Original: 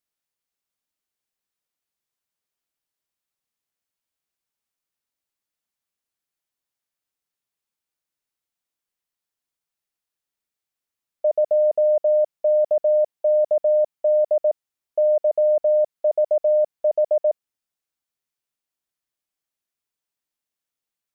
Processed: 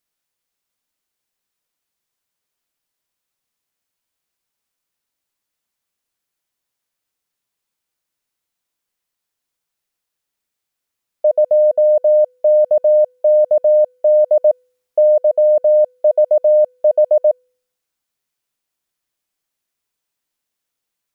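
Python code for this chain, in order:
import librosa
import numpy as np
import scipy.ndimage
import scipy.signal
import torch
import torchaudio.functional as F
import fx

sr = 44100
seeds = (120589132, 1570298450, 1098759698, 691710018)

p1 = fx.comb_fb(x, sr, f0_hz=500.0, decay_s=0.67, harmonics='all', damping=0.0, mix_pct=60)
p2 = fx.rider(p1, sr, range_db=5, speed_s=0.5)
p3 = p1 + F.gain(torch.from_numpy(p2), 2.5).numpy()
y = F.gain(torch.from_numpy(p3), 7.0).numpy()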